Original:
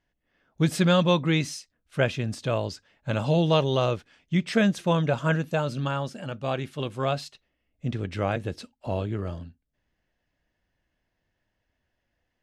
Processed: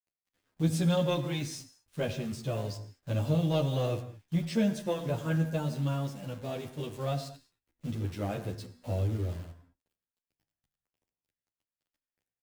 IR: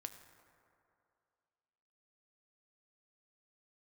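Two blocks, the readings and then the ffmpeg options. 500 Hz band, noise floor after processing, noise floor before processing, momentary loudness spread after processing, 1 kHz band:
−7.0 dB, below −85 dBFS, −78 dBFS, 12 LU, −10.5 dB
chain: -filter_complex "[0:a]equalizer=frequency=1500:width_type=o:width=2.1:gain=-9.5,asplit=2[link_01][link_02];[link_02]asoftclip=type=hard:threshold=-23.5dB,volume=-5dB[link_03];[link_01][link_03]amix=inputs=2:normalize=0,acrusher=bits=8:dc=4:mix=0:aa=0.000001[link_04];[1:a]atrim=start_sample=2205,afade=type=out:start_time=0.28:duration=0.01,atrim=end_sample=12789[link_05];[link_04][link_05]afir=irnorm=-1:irlink=0,asplit=2[link_06][link_07];[link_07]adelay=10.9,afreqshift=-0.85[link_08];[link_06][link_08]amix=inputs=2:normalize=1"

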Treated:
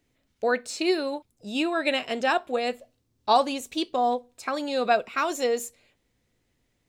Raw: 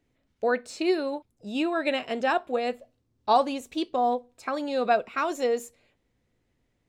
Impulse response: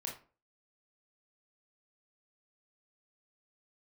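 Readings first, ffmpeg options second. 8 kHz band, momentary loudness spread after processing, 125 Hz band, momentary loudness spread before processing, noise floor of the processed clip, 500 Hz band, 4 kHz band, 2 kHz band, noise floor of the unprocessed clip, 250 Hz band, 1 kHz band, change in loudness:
+7.0 dB, 9 LU, can't be measured, 10 LU, −73 dBFS, +0.5 dB, +5.0 dB, +2.5 dB, −74 dBFS, 0.0 dB, +1.0 dB, +1.0 dB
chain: -af "highshelf=frequency=2600:gain=8"

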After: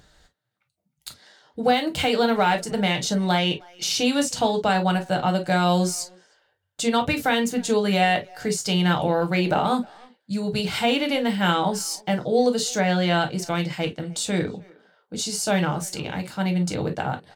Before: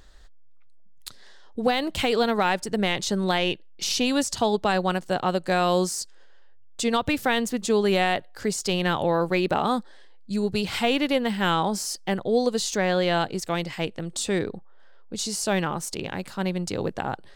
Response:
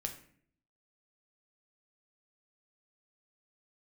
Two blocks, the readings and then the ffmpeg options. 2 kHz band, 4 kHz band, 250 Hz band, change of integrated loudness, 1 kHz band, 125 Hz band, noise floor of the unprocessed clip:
+1.5 dB, +2.0 dB, +2.5 dB, +2.0 dB, +2.5 dB, +5.0 dB, −45 dBFS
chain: -filter_complex "[0:a]highpass=60,asplit=2[link_01][link_02];[link_02]adelay=310,highpass=300,lowpass=3400,asoftclip=type=hard:threshold=-19.5dB,volume=-23dB[link_03];[link_01][link_03]amix=inputs=2:normalize=0[link_04];[1:a]atrim=start_sample=2205,atrim=end_sample=3087,asetrate=52920,aresample=44100[link_05];[link_04][link_05]afir=irnorm=-1:irlink=0,volume=4dB"

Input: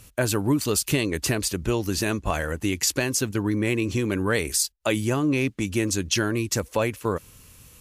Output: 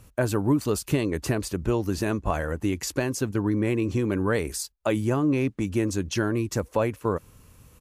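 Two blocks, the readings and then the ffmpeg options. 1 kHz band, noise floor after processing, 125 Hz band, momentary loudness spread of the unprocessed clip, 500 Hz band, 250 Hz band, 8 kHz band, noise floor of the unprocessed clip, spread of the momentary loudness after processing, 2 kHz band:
−0.5 dB, −56 dBFS, 0.0 dB, 4 LU, 0.0 dB, 0.0 dB, −9.0 dB, −52 dBFS, 4 LU, −5.0 dB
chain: -af "firequalizer=gain_entry='entry(1000,0);entry(2000,-6);entry(3100,-9)':delay=0.05:min_phase=1"

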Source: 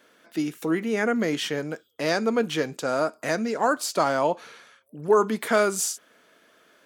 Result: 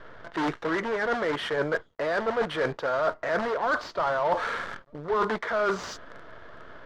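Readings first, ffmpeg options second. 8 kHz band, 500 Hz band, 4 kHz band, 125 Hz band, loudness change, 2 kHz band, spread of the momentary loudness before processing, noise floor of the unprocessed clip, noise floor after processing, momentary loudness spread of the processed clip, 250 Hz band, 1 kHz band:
below −15 dB, −3.0 dB, −4.5 dB, −4.0 dB, −3.0 dB, +0.5 dB, 9 LU, −60 dBFS, −56 dBFS, 13 LU, −7.0 dB, −0.5 dB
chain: -filter_complex "[0:a]asplit=2[link_01][link_02];[link_02]aeval=exprs='(mod(15.8*val(0)+1,2)-1)/15.8':channel_layout=same,volume=-5.5dB[link_03];[link_01][link_03]amix=inputs=2:normalize=0,equalizer=frequency=250:width=1.4:gain=-12,asplit=2[link_04][link_05];[link_05]highpass=frequency=720:poles=1,volume=17dB,asoftclip=type=tanh:threshold=-8dB[link_06];[link_04][link_06]amix=inputs=2:normalize=0,lowpass=frequency=3000:poles=1,volume=-6dB,lowpass=frequency=6600:width=0.5412,lowpass=frequency=6600:width=1.3066,acrusher=bits=7:dc=4:mix=0:aa=0.000001,areverse,acompressor=threshold=-30dB:ratio=12,areverse,bandreject=frequency=780:width=12,adynamicsmooth=sensitivity=1.5:basefreq=1700,equalizer=frequency=2500:width=3.1:gain=-8,volume=8.5dB"

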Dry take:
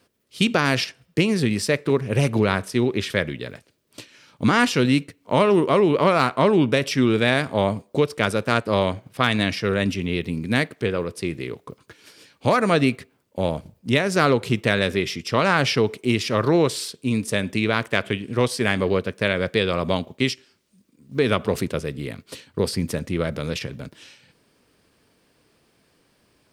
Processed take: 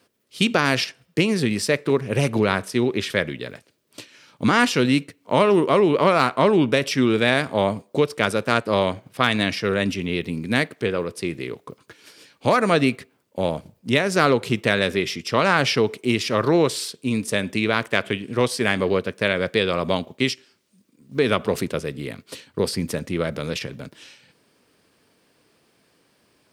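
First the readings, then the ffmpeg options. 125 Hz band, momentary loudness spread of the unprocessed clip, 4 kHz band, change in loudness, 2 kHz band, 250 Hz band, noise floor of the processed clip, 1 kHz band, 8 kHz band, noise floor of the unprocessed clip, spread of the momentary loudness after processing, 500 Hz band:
−2.0 dB, 11 LU, +1.0 dB, +0.5 dB, +1.0 dB, −0.5 dB, −64 dBFS, +1.0 dB, +1.0 dB, −65 dBFS, 11 LU, +0.5 dB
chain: -af "highpass=frequency=140:poles=1,volume=1dB"

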